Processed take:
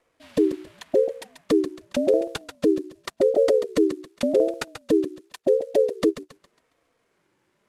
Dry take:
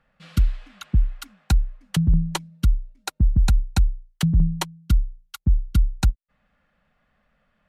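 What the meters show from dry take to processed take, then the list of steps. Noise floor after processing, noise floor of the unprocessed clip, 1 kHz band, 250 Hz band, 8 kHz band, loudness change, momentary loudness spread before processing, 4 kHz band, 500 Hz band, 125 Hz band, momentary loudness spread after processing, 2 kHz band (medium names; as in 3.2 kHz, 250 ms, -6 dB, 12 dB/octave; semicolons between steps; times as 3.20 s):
-71 dBFS, -70 dBFS, -1.0 dB, +4.0 dB, -5.5 dB, +0.5 dB, 9 LU, -3.5 dB, +27.5 dB, -23.5 dB, 11 LU, -1.5 dB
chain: CVSD coder 64 kbps; thinning echo 137 ms, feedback 39%, high-pass 200 Hz, level -8.5 dB; ring modulator with a swept carrier 420 Hz, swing 20%, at 0.88 Hz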